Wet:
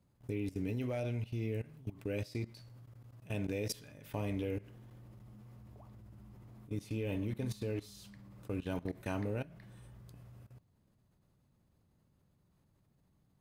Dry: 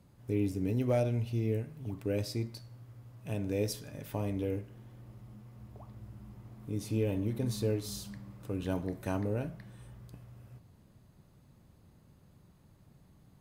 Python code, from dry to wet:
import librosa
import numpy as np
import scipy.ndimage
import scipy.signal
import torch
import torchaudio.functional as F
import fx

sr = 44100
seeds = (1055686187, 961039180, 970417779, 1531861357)

y = fx.dynamic_eq(x, sr, hz=2500.0, q=0.97, threshold_db=-59.0, ratio=4.0, max_db=7)
y = fx.level_steps(y, sr, step_db=18)